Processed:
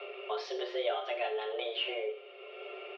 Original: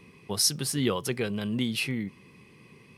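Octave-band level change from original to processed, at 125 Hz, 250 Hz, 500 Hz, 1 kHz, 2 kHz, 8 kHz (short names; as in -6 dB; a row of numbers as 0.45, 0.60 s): under -40 dB, -18.0 dB, +1.0 dB, +3.0 dB, -4.5 dB, under -30 dB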